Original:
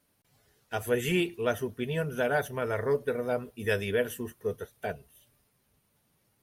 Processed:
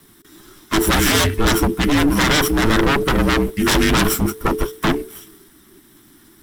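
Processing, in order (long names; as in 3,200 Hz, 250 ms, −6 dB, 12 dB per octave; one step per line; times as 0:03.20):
lower of the sound and its delayed copy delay 0.49 ms
sine wavefolder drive 16 dB, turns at −15.5 dBFS
frequency shifter −440 Hz
level +3.5 dB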